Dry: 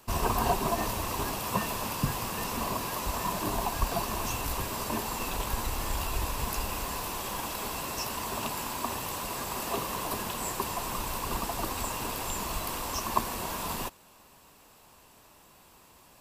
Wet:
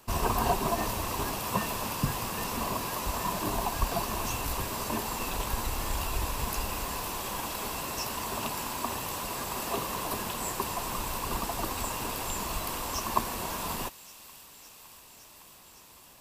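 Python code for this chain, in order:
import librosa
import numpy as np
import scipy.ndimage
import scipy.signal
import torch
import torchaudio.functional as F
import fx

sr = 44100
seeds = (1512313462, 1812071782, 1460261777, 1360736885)

y = fx.echo_wet_highpass(x, sr, ms=561, feedback_pct=81, hz=2400.0, wet_db=-16.5)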